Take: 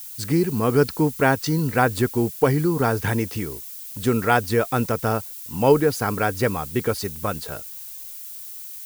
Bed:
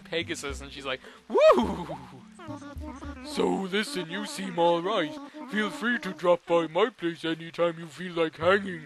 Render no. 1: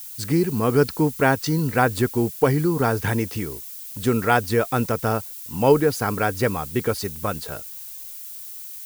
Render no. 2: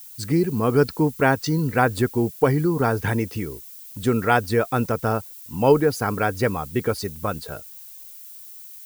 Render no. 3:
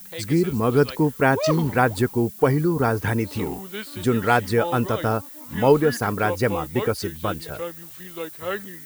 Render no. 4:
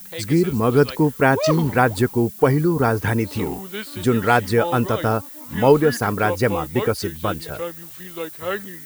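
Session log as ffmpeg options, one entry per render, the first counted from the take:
-af anull
-af "afftdn=nr=6:nf=-37"
-filter_complex "[1:a]volume=0.501[s0];[0:a][s0]amix=inputs=2:normalize=0"
-af "volume=1.33,alimiter=limit=0.794:level=0:latency=1"

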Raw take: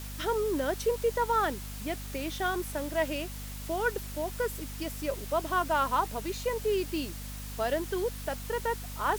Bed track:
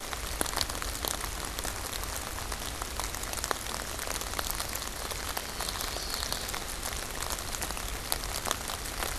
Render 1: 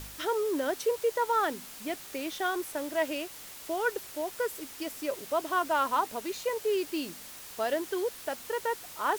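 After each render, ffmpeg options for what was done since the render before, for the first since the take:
-af "bandreject=f=50:t=h:w=4,bandreject=f=100:t=h:w=4,bandreject=f=150:t=h:w=4,bandreject=f=200:t=h:w=4,bandreject=f=250:t=h:w=4"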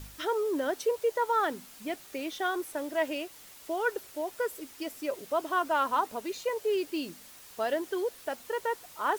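-af "afftdn=nr=6:nf=-46"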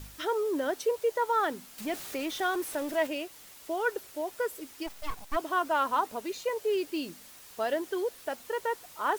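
-filter_complex "[0:a]asettb=1/sr,asplit=3[s0][s1][s2];[s0]atrim=end=1.784[s3];[s1]atrim=start=1.78:end=3.07,asetpts=PTS-STARTPTS,afade=t=in:d=0.004:c=qsin,afade=t=out:st=1.286:d=0.004:c=qsin,aeval=exprs='val(0)+0.5*0.0112*sgn(val(0))':c=same[s4];[s2]atrim=start=3.066[s5];[s3][s4]acrossfade=d=0.004:c1=hsin:c2=qsin[s6];[s6][s5]acrossfade=d=0.004:c1=qsin:c2=hsin,asplit=3[s7][s8][s9];[s7]afade=t=out:st=4.86:d=0.02[s10];[s8]aeval=exprs='abs(val(0))':c=same,afade=t=in:st=4.86:d=0.02,afade=t=out:st=5.35:d=0.02[s11];[s9]afade=t=in:st=5.35:d=0.02[s12];[s10][s11][s12]amix=inputs=3:normalize=0"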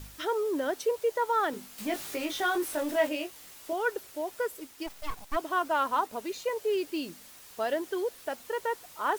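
-filter_complex "[0:a]asettb=1/sr,asplit=3[s0][s1][s2];[s0]atrim=end=1.514[s3];[s1]atrim=start=1.51:end=3.73,asetpts=PTS-STARTPTS,afade=t=in:d=0.004:c=qsin,afade=t=out:st=2.216:d=0.004:c=qsin,asplit=2[s4][s5];[s5]adelay=20,volume=0.631[s6];[s4][s6]amix=inputs=2:normalize=0,atrim=end_sample=97902[s7];[s2]atrim=start=3.726[s8];[s3][s7]acrossfade=d=0.004:c1=hsin:c2=qsin[s9];[s9][s8]acrossfade=d=0.004:c1=qsin:c2=hsin,asettb=1/sr,asplit=3[s10][s11][s12];[s10]atrim=end=4.434[s13];[s11]atrim=start=4.43:end=6.13,asetpts=PTS-STARTPTS,afade=t=in:d=0.004:c=qsin,afade=t=out:st=1.696:d=0.004:c=qsin,aeval=exprs='sgn(val(0))*max(abs(val(0))-0.001,0)':c=same[s14];[s12]atrim=start=6.126[s15];[s13][s14]acrossfade=d=0.004:c1=hsin:c2=qsin[s16];[s16][s15]acrossfade=d=0.004:c1=qsin:c2=hsin"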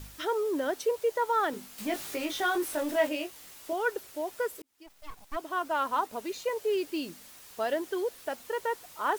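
-filter_complex "[0:a]asplit=2[s0][s1];[s0]atrim=end=4.62,asetpts=PTS-STARTPTS,afade=t=out:st=4.616:d=0.004:c=hsin[s2];[s1]atrim=start=4.62,asetpts=PTS-STARTPTS,afade=t=in:d=1.93:c=qsin[s3];[s2][s3]concat=n=2:v=0:a=1"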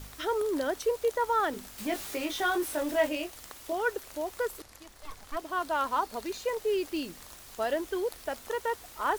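-filter_complex "[1:a]volume=0.126[s0];[0:a][s0]amix=inputs=2:normalize=0"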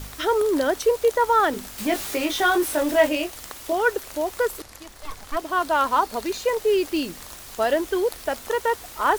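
-af "volume=2.66"

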